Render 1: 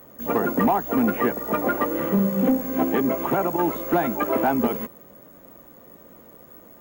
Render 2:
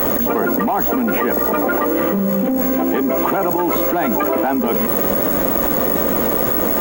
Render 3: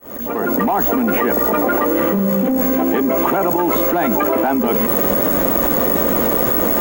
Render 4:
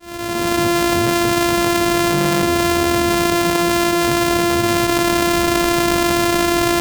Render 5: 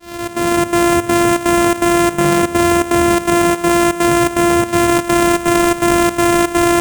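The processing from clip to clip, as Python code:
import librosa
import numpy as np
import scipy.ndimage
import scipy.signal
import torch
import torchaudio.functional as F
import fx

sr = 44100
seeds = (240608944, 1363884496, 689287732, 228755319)

y1 = fx.peak_eq(x, sr, hz=130.0, db=-11.0, octaves=0.55)
y1 = fx.env_flatten(y1, sr, amount_pct=100)
y2 = fx.fade_in_head(y1, sr, length_s=0.6)
y2 = y2 * 10.0 ** (1.0 / 20.0)
y3 = np.r_[np.sort(y2[:len(y2) // 128 * 128].reshape(-1, 128), axis=1).ravel(), y2[len(y2) // 128 * 128:]]
y4 = y3 + 10.0 ** (-5.0 / 20.0) * np.pad(y3, (int(116 * sr / 1000.0), 0))[:len(y3)]
y4 = fx.step_gate(y4, sr, bpm=165, pattern='xxx.xxx.', floor_db=-12.0, edge_ms=4.5)
y4 = y4 * 10.0 ** (1.0 / 20.0)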